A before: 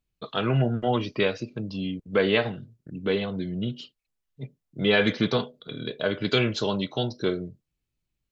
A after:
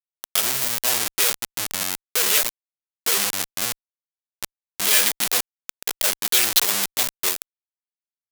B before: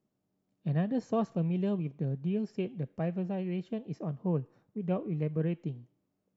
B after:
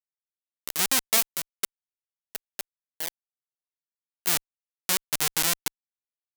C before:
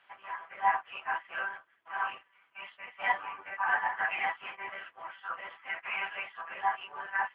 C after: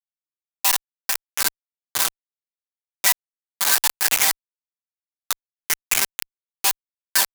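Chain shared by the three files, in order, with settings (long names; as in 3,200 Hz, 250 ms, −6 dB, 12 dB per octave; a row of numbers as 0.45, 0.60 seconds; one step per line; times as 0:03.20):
hold until the input has moved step −23.5 dBFS
fuzz pedal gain 39 dB, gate −44 dBFS
first difference
normalise the peak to −2 dBFS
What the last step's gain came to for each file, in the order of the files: +6.5, +7.0, +6.5 decibels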